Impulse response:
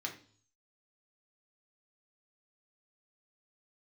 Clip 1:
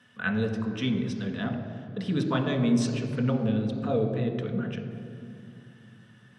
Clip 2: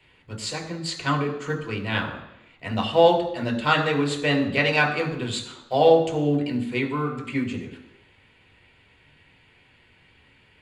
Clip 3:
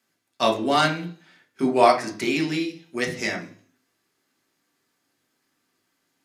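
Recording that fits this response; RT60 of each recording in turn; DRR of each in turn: 3; 2.6, 0.85, 0.50 seconds; 2.5, 1.5, 0.0 decibels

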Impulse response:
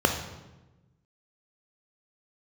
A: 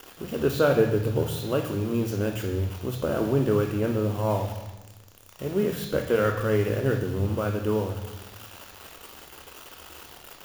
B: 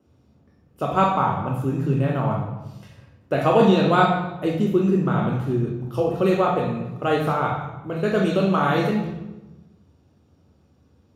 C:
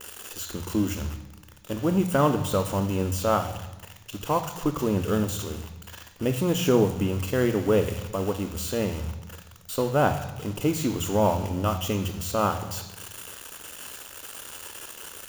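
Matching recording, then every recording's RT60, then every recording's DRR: A; 1.1, 1.1, 1.1 seconds; 4.0, −1.5, 8.0 decibels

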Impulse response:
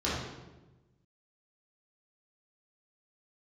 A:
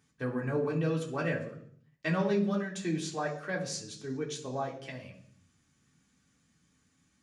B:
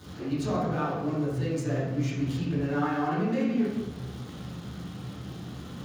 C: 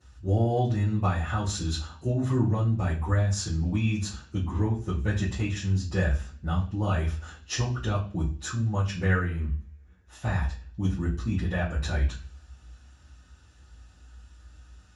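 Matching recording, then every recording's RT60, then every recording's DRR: B; 0.60, 1.1, 0.45 seconds; −2.5, −9.5, −13.5 decibels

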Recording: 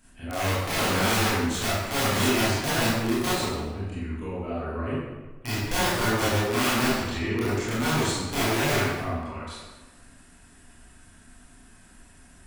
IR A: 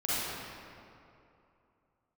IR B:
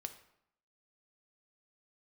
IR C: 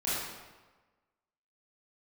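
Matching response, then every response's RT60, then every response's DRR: C; 2.8, 0.75, 1.3 seconds; −11.0, 7.5, −11.0 decibels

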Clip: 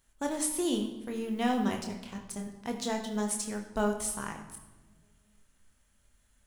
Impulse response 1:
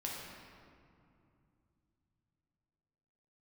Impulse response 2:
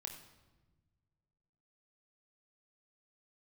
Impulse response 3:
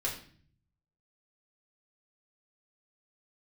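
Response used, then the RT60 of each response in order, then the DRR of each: 2; 2.6, 1.2, 0.50 seconds; −4.0, 2.5, −4.5 decibels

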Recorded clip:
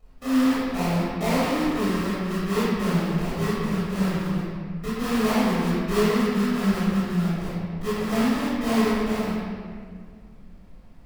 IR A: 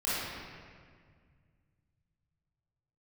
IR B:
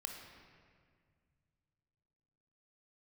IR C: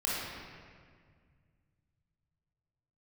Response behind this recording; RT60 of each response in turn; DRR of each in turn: A; 1.9, 2.0, 1.9 seconds; −11.5, 2.5, −6.5 decibels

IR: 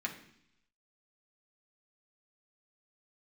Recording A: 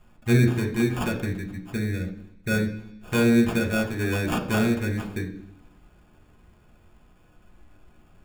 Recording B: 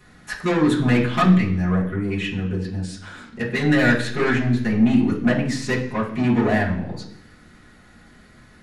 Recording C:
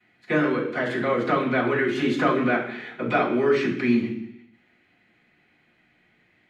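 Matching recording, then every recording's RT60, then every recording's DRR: A; 0.70, 0.70, 0.70 seconds; 0.0, −6.0, −15.5 decibels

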